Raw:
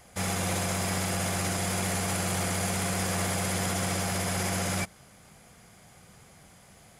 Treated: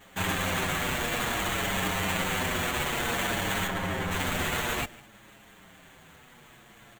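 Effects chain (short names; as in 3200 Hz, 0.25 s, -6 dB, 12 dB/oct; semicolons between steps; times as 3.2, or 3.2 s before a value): one-sided fold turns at -25.5 dBFS; HPF 87 Hz; band shelf 4500 Hz +11.5 dB; echo 0.152 s -22 dB; sample-rate reducer 5100 Hz, jitter 0%; 3.67–4.11 high shelf 2700 Hz -10.5 dB; endless flanger 7 ms -0.55 Hz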